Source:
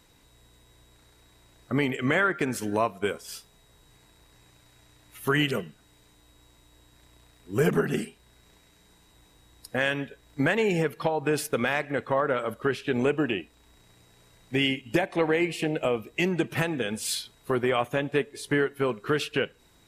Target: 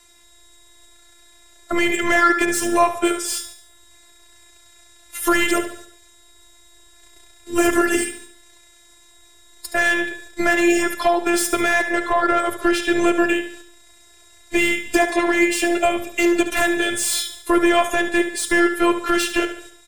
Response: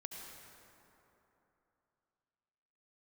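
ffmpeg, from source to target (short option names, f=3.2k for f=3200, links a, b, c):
-filter_complex "[0:a]agate=range=-8dB:threshold=-55dB:ratio=16:detection=peak,equalizer=f=125:t=o:w=1:g=3,equalizer=f=250:t=o:w=1:g=-10,equalizer=f=500:t=o:w=1:g=4,equalizer=f=2k:t=o:w=1:g=3,equalizer=f=8k:t=o:w=1:g=11,apsyclip=21dB,acrossover=split=160|1400[a][b][c];[c]asoftclip=type=tanh:threshold=-10.5dB[d];[a][b][d]amix=inputs=3:normalize=0,afftfilt=real='hypot(re,im)*cos(PI*b)':imag='0':win_size=512:overlap=0.75,asplit=2[e][f];[f]aecho=0:1:72|144|216|288|360:0.316|0.142|0.064|0.0288|0.013[g];[e][g]amix=inputs=2:normalize=0,volume=-6dB"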